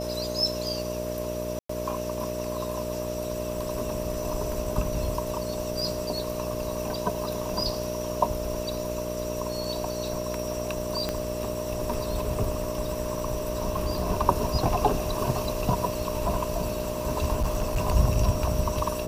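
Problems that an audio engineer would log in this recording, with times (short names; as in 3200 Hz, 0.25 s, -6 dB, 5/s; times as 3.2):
buzz 60 Hz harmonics 11 -34 dBFS
tone 610 Hz -32 dBFS
1.59–1.69 gap 0.104 s
11.09 pop -13 dBFS
17.4–17.82 clipped -20.5 dBFS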